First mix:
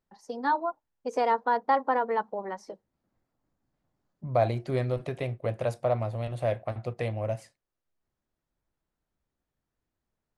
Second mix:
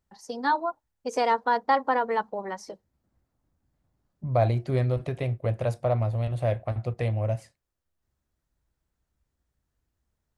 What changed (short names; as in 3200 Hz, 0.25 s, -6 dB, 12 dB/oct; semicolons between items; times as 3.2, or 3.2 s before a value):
first voice: add high shelf 2300 Hz +10 dB; master: add bell 61 Hz +12.5 dB 1.9 oct